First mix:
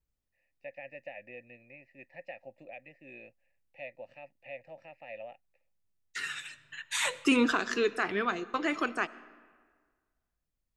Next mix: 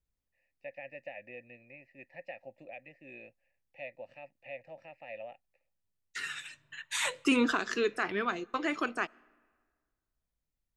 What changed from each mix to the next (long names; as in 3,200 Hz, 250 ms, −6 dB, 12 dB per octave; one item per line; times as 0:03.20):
second voice: send −11.5 dB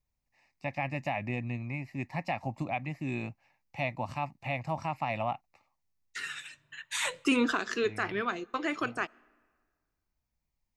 first voice: remove formant filter e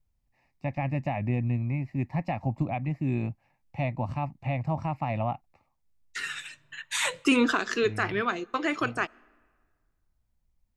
first voice: add spectral tilt −3 dB per octave
second voice +4.0 dB